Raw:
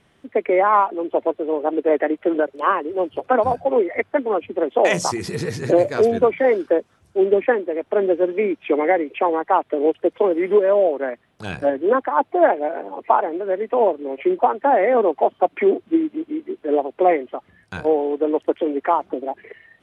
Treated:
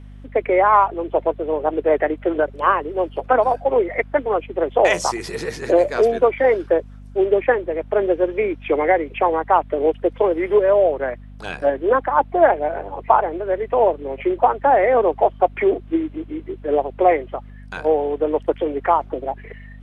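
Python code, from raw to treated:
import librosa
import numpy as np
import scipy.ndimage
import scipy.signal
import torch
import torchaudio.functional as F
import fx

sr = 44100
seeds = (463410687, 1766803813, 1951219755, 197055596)

y = fx.bass_treble(x, sr, bass_db=-15, treble_db=-3)
y = fx.add_hum(y, sr, base_hz=50, snr_db=20)
y = y * librosa.db_to_amplitude(2.0)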